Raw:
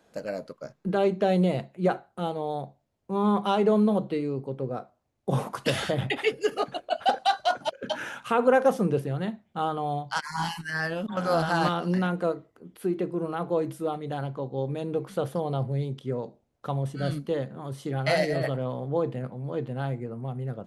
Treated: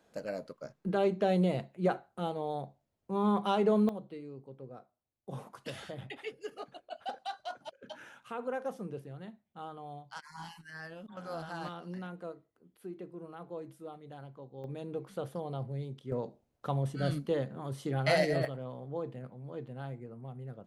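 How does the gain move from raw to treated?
-5 dB
from 3.89 s -16 dB
from 14.64 s -9.5 dB
from 16.12 s -3 dB
from 18.45 s -11 dB

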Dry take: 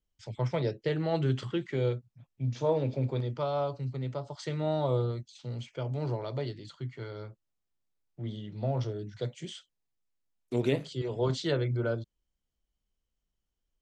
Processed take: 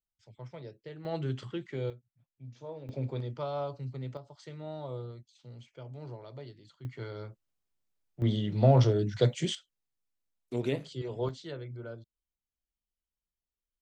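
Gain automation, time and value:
-15 dB
from 1.05 s -5.5 dB
from 1.9 s -15.5 dB
from 2.89 s -4 dB
from 4.17 s -11 dB
from 6.85 s 0 dB
from 8.22 s +9.5 dB
from 9.55 s -3.5 dB
from 11.29 s -12 dB

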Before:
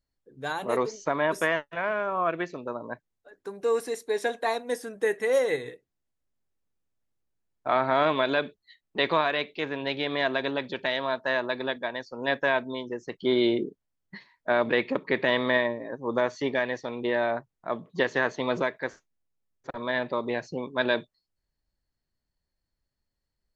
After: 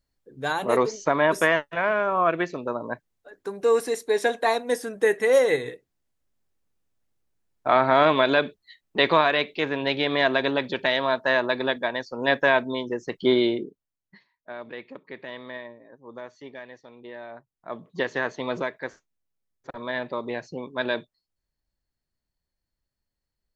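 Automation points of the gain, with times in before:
13.28 s +5 dB
13.62 s -3 dB
14.52 s -14 dB
17.28 s -14 dB
17.85 s -1.5 dB

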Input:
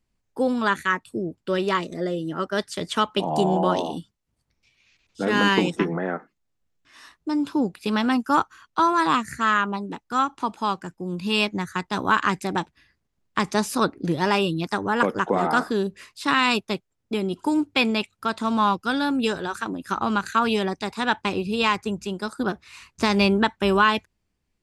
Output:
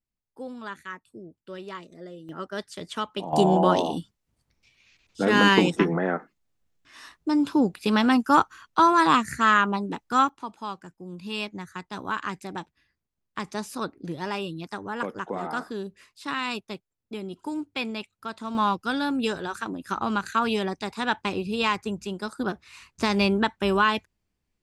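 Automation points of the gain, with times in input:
-15 dB
from 2.29 s -8 dB
from 3.33 s +1.5 dB
from 10.29 s -9.5 dB
from 18.55 s -3 dB

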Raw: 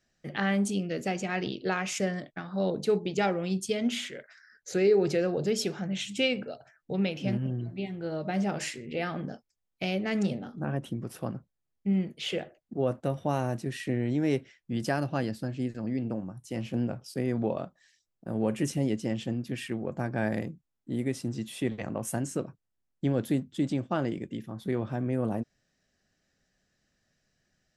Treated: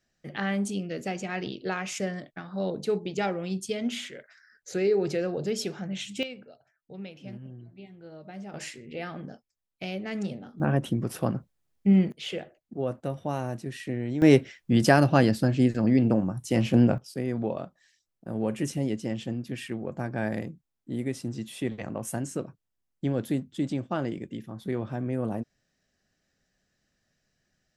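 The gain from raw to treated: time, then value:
-1.5 dB
from 6.23 s -12 dB
from 8.54 s -4 dB
from 10.6 s +7 dB
from 12.12 s -2 dB
from 14.22 s +10 dB
from 16.98 s -0.5 dB

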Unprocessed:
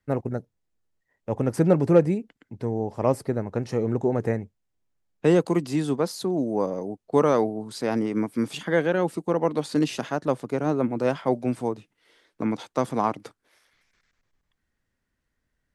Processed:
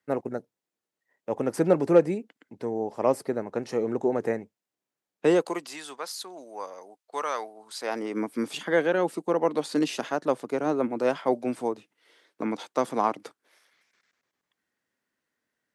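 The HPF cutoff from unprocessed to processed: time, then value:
5.27 s 270 Hz
5.79 s 1100 Hz
7.58 s 1100 Hz
8.25 s 270 Hz

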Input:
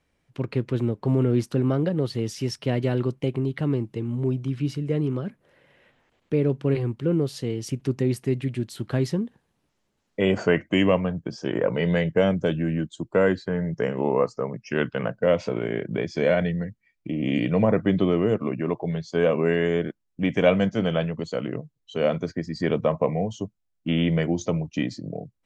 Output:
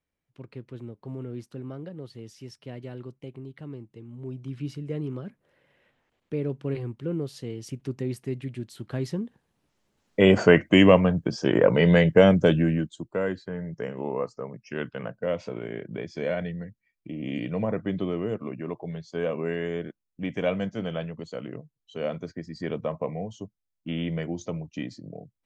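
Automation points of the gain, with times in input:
4.11 s -15 dB
4.56 s -7 dB
8.9 s -7 dB
10.23 s +4.5 dB
12.57 s +4.5 dB
13.15 s -7.5 dB

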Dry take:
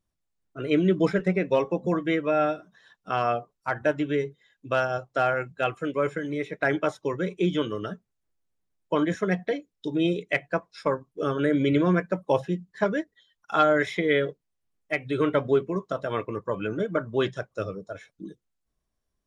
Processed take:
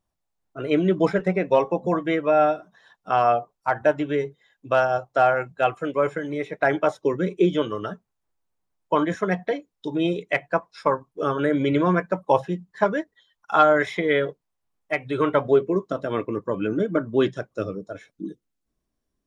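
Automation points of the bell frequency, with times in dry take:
bell +8.5 dB 1.1 oct
6.87 s 800 Hz
7.19 s 220 Hz
7.71 s 920 Hz
15.38 s 920 Hz
15.86 s 280 Hz

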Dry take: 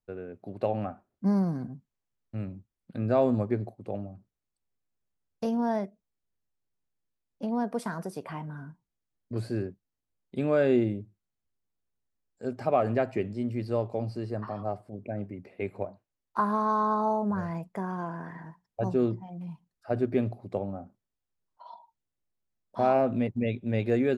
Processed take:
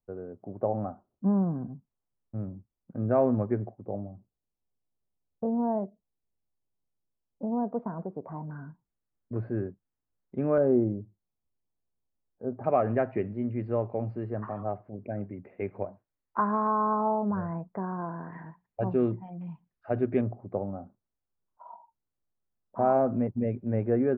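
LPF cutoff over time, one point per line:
LPF 24 dB/oct
1200 Hz
from 3.11 s 1800 Hz
from 3.84 s 1000 Hz
from 8.51 s 1700 Hz
from 10.58 s 1100 Hz
from 12.64 s 2100 Hz
from 16.67 s 1500 Hz
from 18.33 s 2600 Hz
from 20.21 s 1500 Hz

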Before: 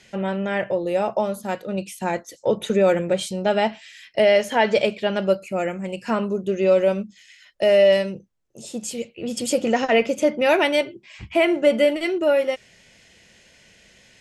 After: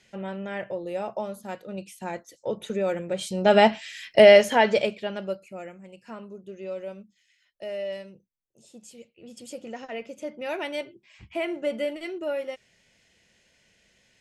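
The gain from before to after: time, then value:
3.08 s -9 dB
3.56 s +4 dB
4.31 s +4 dB
5.1 s -9 dB
5.88 s -17.5 dB
10.05 s -17.5 dB
10.84 s -11 dB

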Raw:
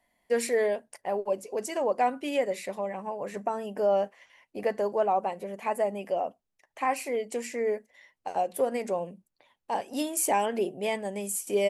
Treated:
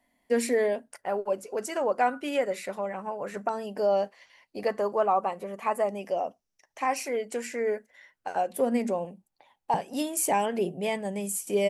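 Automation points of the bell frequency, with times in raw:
bell +11.5 dB 0.34 oct
260 Hz
from 0.91 s 1400 Hz
from 3.49 s 4500 Hz
from 4.68 s 1200 Hz
from 5.89 s 5700 Hz
from 7.06 s 1500 Hz
from 8.5 s 230 Hz
from 9.05 s 810 Hz
from 9.74 s 170 Hz

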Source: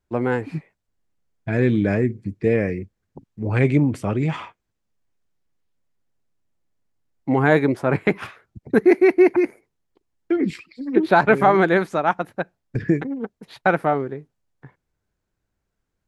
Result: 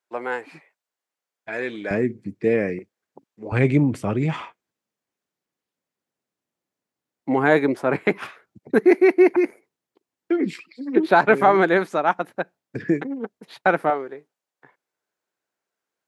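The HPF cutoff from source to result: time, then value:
620 Hz
from 1.91 s 190 Hz
from 2.79 s 430 Hz
from 3.52 s 100 Hz
from 4.41 s 220 Hz
from 13.9 s 460 Hz

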